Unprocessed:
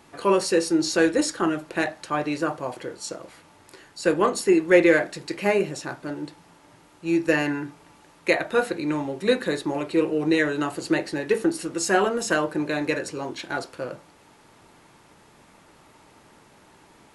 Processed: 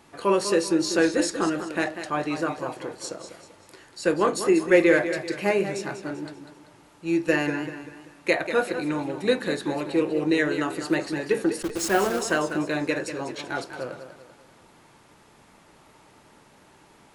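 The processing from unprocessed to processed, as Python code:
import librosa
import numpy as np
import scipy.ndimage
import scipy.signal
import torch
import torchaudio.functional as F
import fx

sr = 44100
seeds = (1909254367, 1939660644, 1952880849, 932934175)

y = fx.delta_hold(x, sr, step_db=-27.5, at=(11.62, 12.19))
y = fx.echo_warbled(y, sr, ms=194, feedback_pct=42, rate_hz=2.8, cents=94, wet_db=-10.0)
y = F.gain(torch.from_numpy(y), -1.5).numpy()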